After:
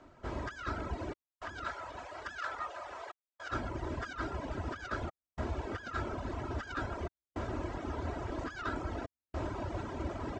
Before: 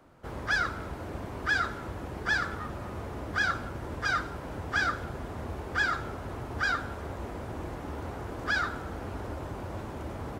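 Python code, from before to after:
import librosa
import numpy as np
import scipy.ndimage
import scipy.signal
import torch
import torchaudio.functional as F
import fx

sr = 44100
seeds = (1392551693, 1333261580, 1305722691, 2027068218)

y = fx.self_delay(x, sr, depth_ms=0.082)
y = scipy.signal.sosfilt(scipy.signal.butter(8, 7800.0, 'lowpass', fs=sr, output='sos'), y)
y = y + 0.4 * np.pad(y, (int(3.1 * sr / 1000.0), 0))[:len(y)]
y = fx.over_compress(y, sr, threshold_db=-33.0, ratio=-0.5)
y = fx.highpass(y, sr, hz=560.0, slope=24, at=(1.23, 3.5))
y = fx.echo_alternate(y, sr, ms=160, hz=1500.0, feedback_pct=83, wet_db=-9)
y = fx.step_gate(y, sr, bpm=106, pattern='xxxxxxxx..xxxx', floor_db=-60.0, edge_ms=4.5)
y = fx.dereverb_blind(y, sr, rt60_s=1.0)
y = y * librosa.db_to_amplitude(-1.5)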